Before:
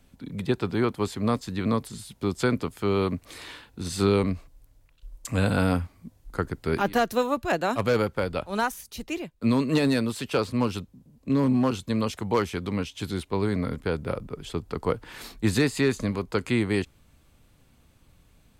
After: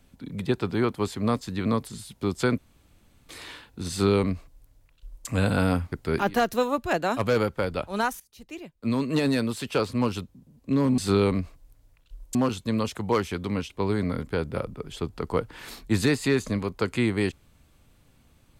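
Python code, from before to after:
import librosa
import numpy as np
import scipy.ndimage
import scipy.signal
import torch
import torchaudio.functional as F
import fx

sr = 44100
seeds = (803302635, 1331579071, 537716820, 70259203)

y = fx.edit(x, sr, fx.room_tone_fill(start_s=2.58, length_s=0.71),
    fx.duplicate(start_s=3.9, length_s=1.37, to_s=11.57),
    fx.cut(start_s=5.92, length_s=0.59),
    fx.fade_in_from(start_s=8.79, length_s=1.62, curve='qsin', floor_db=-19.0),
    fx.cut(start_s=12.92, length_s=0.31), tone=tone)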